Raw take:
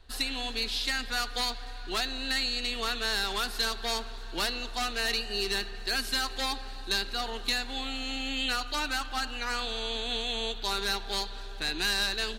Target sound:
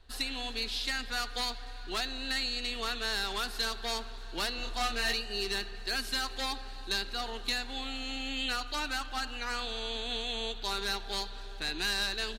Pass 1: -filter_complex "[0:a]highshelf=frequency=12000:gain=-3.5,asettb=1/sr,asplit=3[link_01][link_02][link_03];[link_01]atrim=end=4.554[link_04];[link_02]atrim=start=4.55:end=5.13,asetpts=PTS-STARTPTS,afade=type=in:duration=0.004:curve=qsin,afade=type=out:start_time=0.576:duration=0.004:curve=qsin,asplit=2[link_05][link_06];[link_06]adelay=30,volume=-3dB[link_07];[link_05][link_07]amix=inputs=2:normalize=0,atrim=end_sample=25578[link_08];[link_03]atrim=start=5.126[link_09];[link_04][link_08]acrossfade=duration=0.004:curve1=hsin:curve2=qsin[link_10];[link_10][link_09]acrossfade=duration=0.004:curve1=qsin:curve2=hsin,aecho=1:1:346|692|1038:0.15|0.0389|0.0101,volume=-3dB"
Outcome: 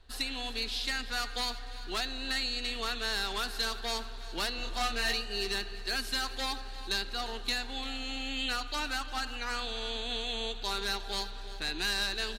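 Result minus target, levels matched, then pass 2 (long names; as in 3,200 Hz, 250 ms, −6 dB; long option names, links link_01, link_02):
echo-to-direct +11.5 dB
-filter_complex "[0:a]highshelf=frequency=12000:gain=-3.5,asettb=1/sr,asplit=3[link_01][link_02][link_03];[link_01]atrim=end=4.554[link_04];[link_02]atrim=start=4.55:end=5.13,asetpts=PTS-STARTPTS,afade=type=in:duration=0.004:curve=qsin,afade=type=out:start_time=0.576:duration=0.004:curve=qsin,asplit=2[link_05][link_06];[link_06]adelay=30,volume=-3dB[link_07];[link_05][link_07]amix=inputs=2:normalize=0,atrim=end_sample=25578[link_08];[link_03]atrim=start=5.126[link_09];[link_04][link_08]acrossfade=duration=0.004:curve1=hsin:curve2=qsin[link_10];[link_10][link_09]acrossfade=duration=0.004:curve1=qsin:curve2=hsin,aecho=1:1:346|692:0.0398|0.0104,volume=-3dB"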